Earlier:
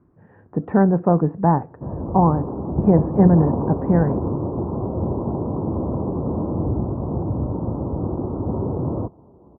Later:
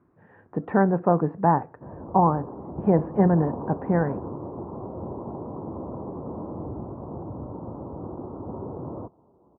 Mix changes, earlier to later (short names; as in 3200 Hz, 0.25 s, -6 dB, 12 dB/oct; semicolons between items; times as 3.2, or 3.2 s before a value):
background -6.0 dB; master: add tilt +2.5 dB/oct